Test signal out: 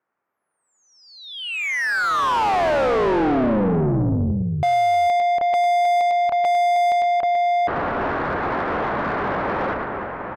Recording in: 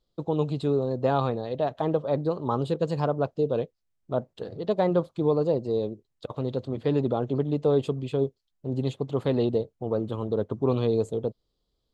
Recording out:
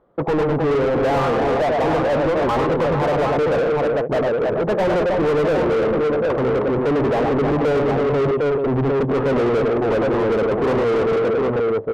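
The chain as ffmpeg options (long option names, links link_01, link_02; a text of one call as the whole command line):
ffmpeg -i in.wav -filter_complex "[0:a]lowpass=frequency=1700:width=0.5412,lowpass=frequency=1700:width=1.3066,aecho=1:1:101|116|313|433|754:0.447|0.119|0.335|0.158|0.376,asplit=2[link_01][link_02];[link_02]highpass=frequency=720:poles=1,volume=37dB,asoftclip=type=tanh:threshold=-9.5dB[link_03];[link_01][link_03]amix=inputs=2:normalize=0,lowpass=frequency=1300:poles=1,volume=-6dB,volume=-1.5dB" out.wav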